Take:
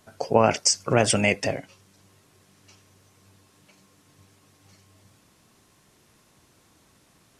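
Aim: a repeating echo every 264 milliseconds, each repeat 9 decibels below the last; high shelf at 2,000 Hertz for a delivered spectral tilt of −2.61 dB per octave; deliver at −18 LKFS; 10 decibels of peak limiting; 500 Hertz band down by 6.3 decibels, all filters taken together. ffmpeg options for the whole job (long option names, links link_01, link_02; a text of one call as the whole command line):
ffmpeg -i in.wav -af "equalizer=frequency=500:width_type=o:gain=-8.5,highshelf=frequency=2000:gain=6,alimiter=limit=-11dB:level=0:latency=1,aecho=1:1:264|528|792|1056:0.355|0.124|0.0435|0.0152,volume=6.5dB" out.wav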